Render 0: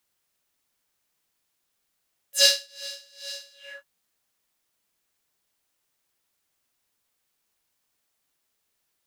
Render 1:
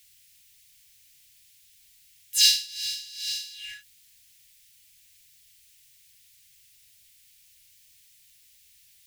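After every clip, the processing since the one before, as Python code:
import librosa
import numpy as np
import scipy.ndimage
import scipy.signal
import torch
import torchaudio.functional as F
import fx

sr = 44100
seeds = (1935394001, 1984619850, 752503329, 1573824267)

y = fx.power_curve(x, sr, exponent=0.7)
y = scipy.signal.sosfilt(scipy.signal.cheby2(4, 60, [320.0, 910.0], 'bandstop', fs=sr, output='sos'), y)
y = y * librosa.db_to_amplitude(-3.0)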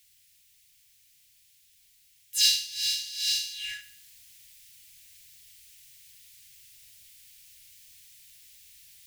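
y = fx.rider(x, sr, range_db=4, speed_s=0.5)
y = fx.echo_feedback(y, sr, ms=73, feedback_pct=45, wet_db=-13.5)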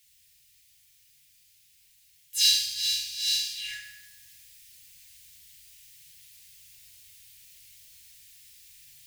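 y = fx.rev_fdn(x, sr, rt60_s=1.1, lf_ratio=1.55, hf_ratio=0.9, size_ms=22.0, drr_db=0.5)
y = y * librosa.db_to_amplitude(-2.0)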